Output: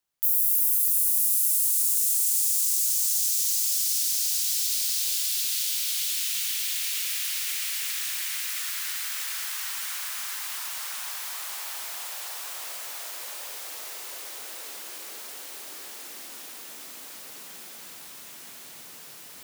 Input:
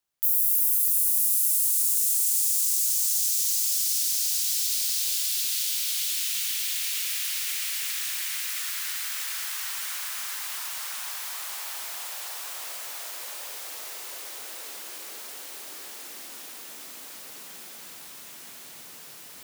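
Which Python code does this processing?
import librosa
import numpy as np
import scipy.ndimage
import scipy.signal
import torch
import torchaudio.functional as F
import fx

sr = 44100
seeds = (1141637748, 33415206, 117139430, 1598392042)

y = fx.highpass(x, sr, hz=430.0, slope=12, at=(9.47, 10.68))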